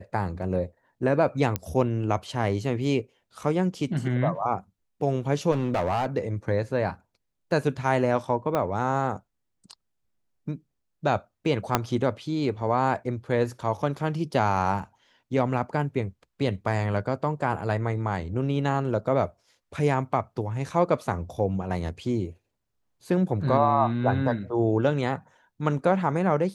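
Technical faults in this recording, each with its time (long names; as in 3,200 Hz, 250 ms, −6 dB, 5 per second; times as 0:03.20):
0:01.56: click −11 dBFS
0:05.51–0:06.06: clipping −20.5 dBFS
0:08.55: click −13 dBFS
0:11.75: click −5 dBFS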